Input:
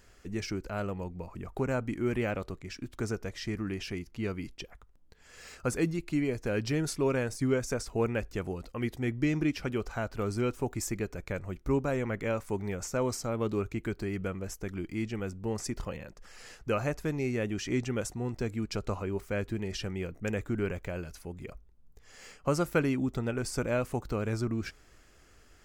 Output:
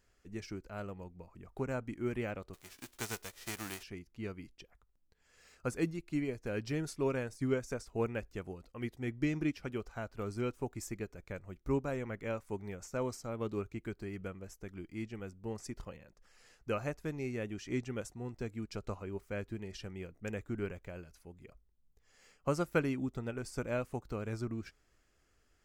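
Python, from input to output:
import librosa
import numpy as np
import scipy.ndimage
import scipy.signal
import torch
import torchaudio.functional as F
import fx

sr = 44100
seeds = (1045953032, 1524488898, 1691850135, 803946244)

y = fx.envelope_flatten(x, sr, power=0.3, at=(2.53, 3.82), fade=0.02)
y = fx.upward_expand(y, sr, threshold_db=-43.0, expansion=1.5)
y = y * 10.0 ** (-3.0 / 20.0)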